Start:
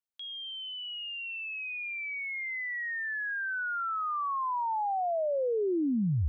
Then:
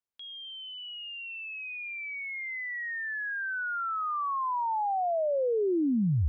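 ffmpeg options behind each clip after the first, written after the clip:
ffmpeg -i in.wav -af "highshelf=frequency=3000:gain=-8.5,volume=2dB" out.wav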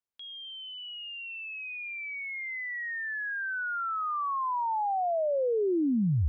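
ffmpeg -i in.wav -af anull out.wav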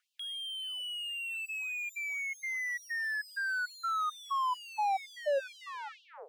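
ffmpeg -i in.wav -filter_complex "[0:a]asplit=2[link_01][link_02];[link_02]highpass=frequency=720:poles=1,volume=34dB,asoftclip=type=tanh:threshold=-22dB[link_03];[link_01][link_03]amix=inputs=2:normalize=0,lowpass=frequency=1000:poles=1,volume=-6dB,afftfilt=real='re*gte(b*sr/1024,420*pow(2700/420,0.5+0.5*sin(2*PI*2.2*pts/sr)))':imag='im*gte(b*sr/1024,420*pow(2700/420,0.5+0.5*sin(2*PI*2.2*pts/sr)))':win_size=1024:overlap=0.75,volume=-1dB" out.wav

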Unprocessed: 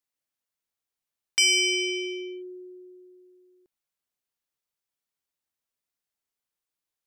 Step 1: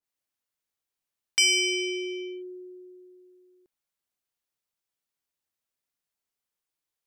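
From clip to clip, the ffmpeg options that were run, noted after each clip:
ffmpeg -i in.wav -af "adynamicequalizer=threshold=0.0141:dfrequency=1600:dqfactor=0.7:tfrequency=1600:tqfactor=0.7:attack=5:release=100:ratio=0.375:range=3:mode=cutabove:tftype=highshelf" out.wav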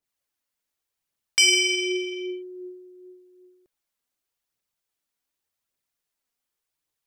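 ffmpeg -i in.wav -af "aphaser=in_gain=1:out_gain=1:delay=4.4:decay=0.35:speed=0.87:type=triangular,volume=3dB" out.wav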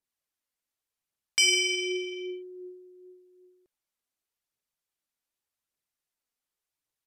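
ffmpeg -i in.wav -af "aresample=32000,aresample=44100,volume=-4.5dB" out.wav

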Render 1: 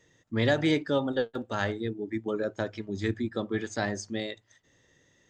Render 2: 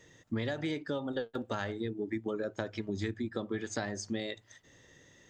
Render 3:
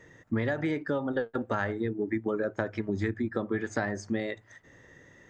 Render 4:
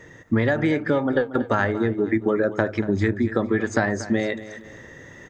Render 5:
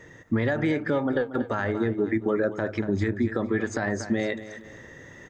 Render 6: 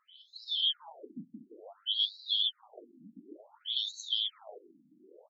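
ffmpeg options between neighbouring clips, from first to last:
ffmpeg -i in.wav -af "acompressor=threshold=-36dB:ratio=12,volume=5dB" out.wav
ffmpeg -i in.wav -af "highshelf=frequency=2500:width_type=q:width=1.5:gain=-8.5,volume=5dB" out.wav
ffmpeg -i in.wav -af "areverse,acompressor=mode=upward:threshold=-46dB:ratio=2.5,areverse,aecho=1:1:234|468|702:0.188|0.0678|0.0244,volume=8.5dB" out.wav
ffmpeg -i in.wav -af "alimiter=limit=-12.5dB:level=0:latency=1:release=40,volume=-2.5dB" out.wav
ffmpeg -i in.wav -filter_complex "[0:a]afftfilt=real='real(if(lt(b,272),68*(eq(floor(b/68),0)*1+eq(floor(b/68),1)*3+eq(floor(b/68),2)*0+eq(floor(b/68),3)*2)+mod(b,68),b),0)':imag='imag(if(lt(b,272),68*(eq(floor(b/68),0)*1+eq(floor(b/68),1)*3+eq(floor(b/68),2)*0+eq(floor(b/68),3)*2)+mod(b,68),b),0)':win_size=2048:overlap=0.75,asplit=8[link_01][link_02][link_03][link_04][link_05][link_06][link_07][link_08];[link_02]adelay=169,afreqshift=110,volume=-8dB[link_09];[link_03]adelay=338,afreqshift=220,volume=-12.6dB[link_10];[link_04]adelay=507,afreqshift=330,volume=-17.2dB[link_11];[link_05]adelay=676,afreqshift=440,volume=-21.7dB[link_12];[link_06]adelay=845,afreqshift=550,volume=-26.3dB[link_13];[link_07]adelay=1014,afreqshift=660,volume=-30.9dB[link_14];[link_08]adelay=1183,afreqshift=770,volume=-35.5dB[link_15];[link_01][link_09][link_10][link_11][link_12][link_13][link_14][link_15]amix=inputs=8:normalize=0,afftfilt=real='re*between(b*sr/1024,210*pow(5500/210,0.5+0.5*sin(2*PI*0.56*pts/sr))/1.41,210*pow(5500/210,0.5+0.5*sin(2*PI*0.56*pts/sr))*1.41)':imag='im*between(b*sr/1024,210*pow(5500/210,0.5+0.5*sin(2*PI*0.56*pts/sr))/1.41,210*pow(5500/210,0.5+0.5*sin(2*PI*0.56*pts/sr))*1.41)':win_size=1024:overlap=0.75,volume=-5dB" out.wav

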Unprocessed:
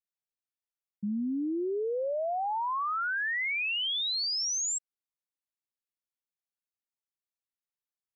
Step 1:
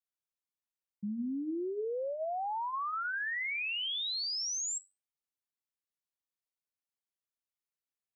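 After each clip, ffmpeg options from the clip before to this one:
ffmpeg -i in.wav -af "flanger=delay=6:depth=5.8:regen=-84:speed=0.34:shape=sinusoidal" out.wav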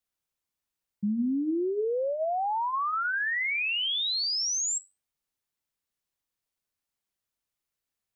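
ffmpeg -i in.wav -af "lowshelf=frequency=130:gain=7.5,volume=6.5dB" out.wav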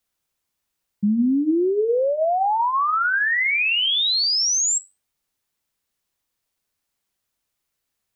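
ffmpeg -i in.wav -af "bandreject=frequency=149:width_type=h:width=4,bandreject=frequency=298:width_type=h:width=4,bandreject=frequency=447:width_type=h:width=4,bandreject=frequency=596:width_type=h:width=4,bandreject=frequency=745:width_type=h:width=4,bandreject=frequency=894:width_type=h:width=4,bandreject=frequency=1043:width_type=h:width=4,bandreject=frequency=1192:width_type=h:width=4,bandreject=frequency=1341:width_type=h:width=4,bandreject=frequency=1490:width_type=h:width=4,bandreject=frequency=1639:width_type=h:width=4,bandreject=frequency=1788:width_type=h:width=4,bandreject=frequency=1937:width_type=h:width=4,bandreject=frequency=2086:width_type=h:width=4,bandreject=frequency=2235:width_type=h:width=4,bandreject=frequency=2384:width_type=h:width=4,bandreject=frequency=2533:width_type=h:width=4,bandreject=frequency=2682:width_type=h:width=4,bandreject=frequency=2831:width_type=h:width=4,bandreject=frequency=2980:width_type=h:width=4,bandreject=frequency=3129:width_type=h:width=4,bandreject=frequency=3278:width_type=h:width=4,bandreject=frequency=3427:width_type=h:width=4,volume=8.5dB" out.wav

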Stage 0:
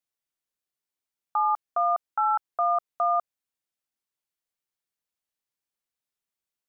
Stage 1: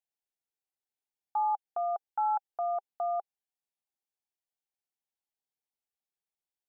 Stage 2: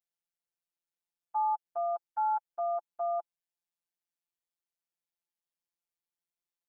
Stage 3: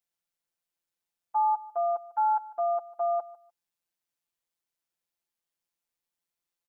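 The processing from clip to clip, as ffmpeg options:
ffmpeg -i in.wav -af "equalizer=frequency=400:width_type=o:width=0.33:gain=5,equalizer=frequency=800:width_type=o:width=0.33:gain=11,equalizer=frequency=1250:width_type=o:width=0.33:gain=-11,volume=-9dB" out.wav
ffmpeg -i in.wav -af "afftfilt=real='hypot(re,im)*cos(PI*b)':imag='0':win_size=1024:overlap=0.75" out.wav
ffmpeg -i in.wav -af "aecho=1:1:149|298:0.112|0.0236,volume=4.5dB" out.wav

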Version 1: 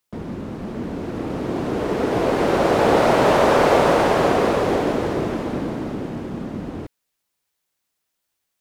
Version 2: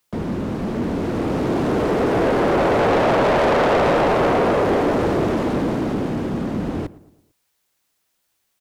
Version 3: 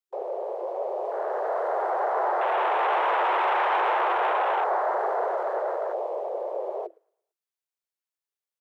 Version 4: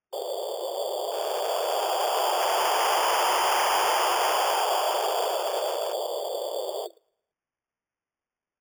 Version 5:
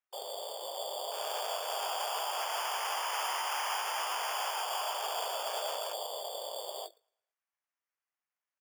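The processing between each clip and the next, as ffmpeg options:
ffmpeg -i in.wav -filter_complex "[0:a]acrossover=split=300|1700[link_01][link_02][link_03];[link_03]acompressor=threshold=-40dB:ratio=6[link_04];[link_01][link_02][link_04]amix=inputs=3:normalize=0,asoftclip=type=tanh:threshold=-20.5dB,asplit=2[link_05][link_06];[link_06]adelay=112,lowpass=frequency=1800:poles=1,volume=-19dB,asplit=2[link_07][link_08];[link_08]adelay=112,lowpass=frequency=1800:poles=1,volume=0.49,asplit=2[link_09][link_10];[link_10]adelay=112,lowpass=frequency=1800:poles=1,volume=0.49,asplit=2[link_11][link_12];[link_12]adelay=112,lowpass=frequency=1800:poles=1,volume=0.49[link_13];[link_05][link_07][link_09][link_11][link_13]amix=inputs=5:normalize=0,volume=6.5dB" out.wav
ffmpeg -i in.wav -af "afwtdn=0.0562,afreqshift=330,volume=-7dB" out.wav
ffmpeg -i in.wav -af "acrusher=samples=11:mix=1:aa=0.000001" out.wav
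ffmpeg -i in.wav -filter_complex "[0:a]highpass=890,alimiter=limit=-19dB:level=0:latency=1:release=363,asplit=2[link_01][link_02];[link_02]adelay=20,volume=-9.5dB[link_03];[link_01][link_03]amix=inputs=2:normalize=0,volume=-3dB" out.wav

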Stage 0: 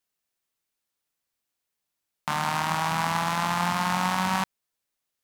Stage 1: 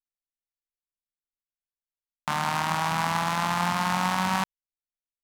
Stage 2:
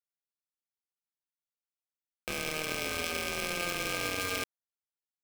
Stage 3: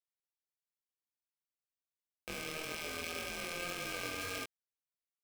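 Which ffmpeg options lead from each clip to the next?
ffmpeg -i in.wav -af "anlmdn=3.98" out.wav
ffmpeg -i in.wav -af "aeval=exprs='val(0)*sgn(sin(2*PI*1400*n/s))':channel_layout=same,volume=-8dB" out.wav
ffmpeg -i in.wav -af "flanger=delay=19:depth=5.8:speed=1.8,volume=-4dB" out.wav

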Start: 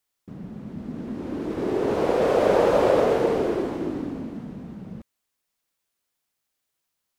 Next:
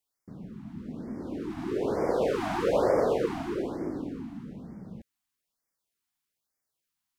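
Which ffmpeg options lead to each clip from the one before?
ffmpeg -i in.wav -af "afftfilt=real='re*(1-between(b*sr/1024,450*pow(3400/450,0.5+0.5*sin(2*PI*1.1*pts/sr))/1.41,450*pow(3400/450,0.5+0.5*sin(2*PI*1.1*pts/sr))*1.41))':imag='im*(1-between(b*sr/1024,450*pow(3400/450,0.5+0.5*sin(2*PI*1.1*pts/sr))/1.41,450*pow(3400/450,0.5+0.5*sin(2*PI*1.1*pts/sr))*1.41))':win_size=1024:overlap=0.75,volume=-5dB" out.wav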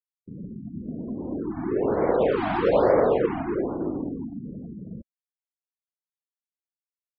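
ffmpeg -i in.wav -af "afftfilt=real='re*gte(hypot(re,im),0.00891)':imag='im*gte(hypot(re,im),0.00891)':win_size=1024:overlap=0.75,volume=5dB" out.wav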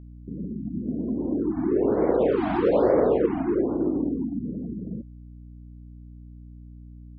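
ffmpeg -i in.wav -filter_complex "[0:a]equalizer=frequency=300:width_type=o:width=1.6:gain=9,asplit=2[link_01][link_02];[link_02]acompressor=threshold=-23dB:ratio=6,volume=1dB[link_03];[link_01][link_03]amix=inputs=2:normalize=0,aeval=exprs='val(0)+0.02*(sin(2*PI*60*n/s)+sin(2*PI*2*60*n/s)/2+sin(2*PI*3*60*n/s)/3+sin(2*PI*4*60*n/s)/4+sin(2*PI*5*60*n/s)/5)':channel_layout=same,volume=-8dB" out.wav

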